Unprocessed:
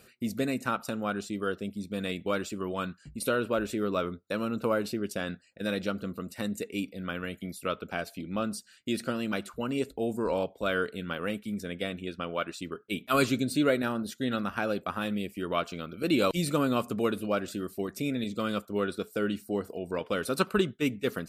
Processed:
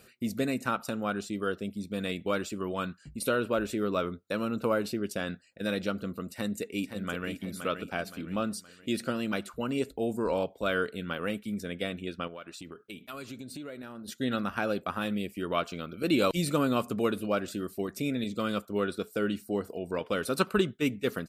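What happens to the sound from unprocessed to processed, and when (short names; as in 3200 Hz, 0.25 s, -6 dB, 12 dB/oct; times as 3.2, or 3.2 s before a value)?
6.27–7.3 echo throw 0.52 s, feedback 45%, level -8 dB
12.27–14.08 compressor 5:1, threshold -40 dBFS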